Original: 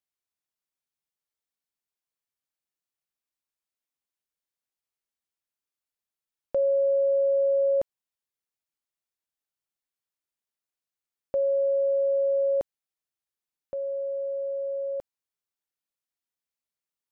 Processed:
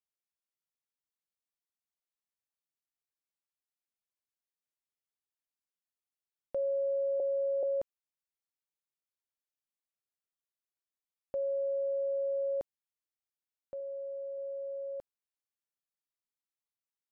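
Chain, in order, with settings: 7.20–7.63 s: reverse; 13.80–14.38 s: peaking EQ 310 Hz -7.5 dB 0.58 oct; trim -8.5 dB

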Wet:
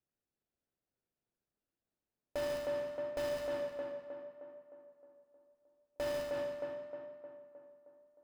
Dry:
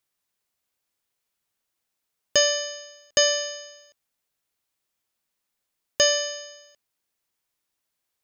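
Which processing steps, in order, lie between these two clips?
median filter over 41 samples; tape echo 310 ms, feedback 60%, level -4 dB, low-pass 1.9 kHz; peak limiter -27.5 dBFS, peak gain reduction 9 dB; trim -2 dB

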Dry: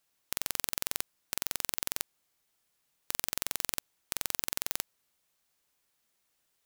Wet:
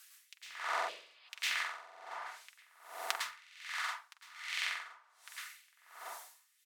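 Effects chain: low-pass that closes with the level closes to 1.2 kHz, closed at -50 dBFS; 3.16–4.50 s: amplifier tone stack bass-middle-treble 10-0-10; delay 1154 ms -17 dB; LFO high-pass sine 0.95 Hz 690–2600 Hz; compression 2.5:1, threshold -51 dBFS, peak gain reduction 10.5 dB; tilt EQ +2.5 dB/octave; comb of notches 270 Hz; plate-style reverb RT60 0.62 s, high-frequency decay 0.65×, pre-delay 95 ms, DRR -8 dB; 0.91–1.26 s: spectral replace 650–5200 Hz after; logarithmic tremolo 1.3 Hz, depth 23 dB; trim +13.5 dB

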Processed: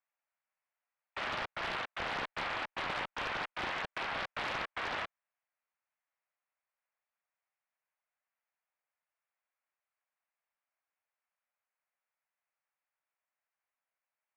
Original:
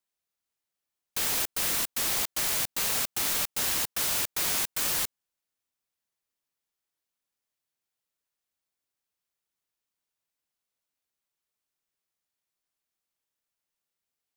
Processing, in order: mistuned SSB +150 Hz 410–2300 Hz; Chebyshev shaper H 5 -23 dB, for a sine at -25.5 dBFS; loudspeaker Doppler distortion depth 0.76 ms

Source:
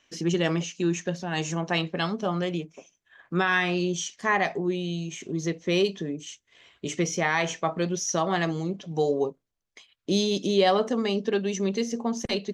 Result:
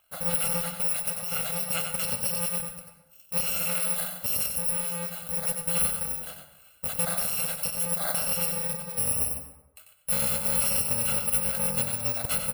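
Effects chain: bit-reversed sample order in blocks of 128 samples; peak limiter -16.5 dBFS, peak gain reduction 6.5 dB; fifteen-band graphic EQ 160 Hz -4 dB, 630 Hz +9 dB, 6.3 kHz -11 dB; on a send at -8 dB: reverberation RT60 0.90 s, pre-delay 98 ms; on the sum: harmonic-percussive split harmonic -4 dB; delay 93 ms -7 dB; trim +2 dB

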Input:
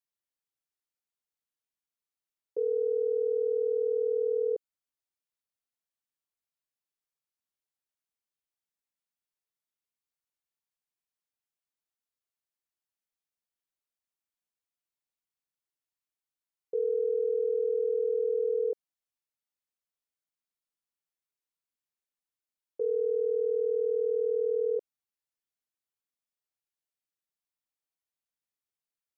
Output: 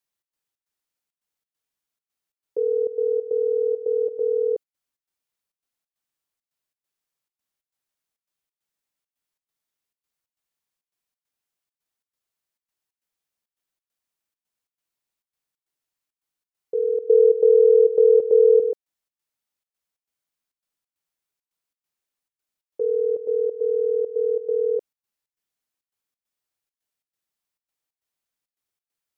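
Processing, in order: 17.09–18.60 s: peaking EQ 390 Hz +10 dB 1 oct; trance gate "xx.xx.xx" 136 bpm -12 dB; trim +6.5 dB

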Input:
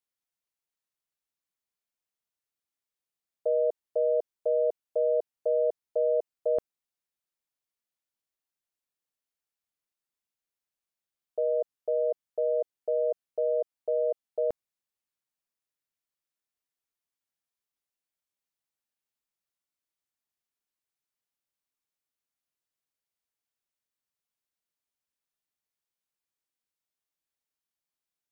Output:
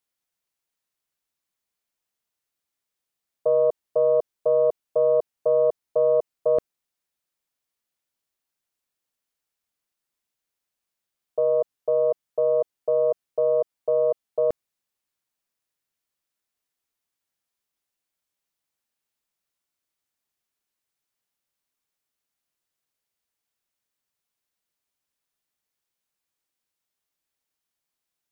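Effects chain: loudspeaker Doppler distortion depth 0.11 ms; trim +6 dB

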